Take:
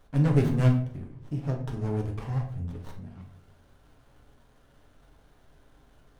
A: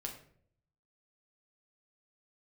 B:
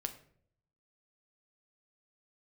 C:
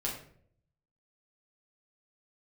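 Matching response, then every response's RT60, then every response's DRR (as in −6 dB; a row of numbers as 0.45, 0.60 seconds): A; 0.60, 0.60, 0.60 seconds; 1.0, 7.0, −4.5 decibels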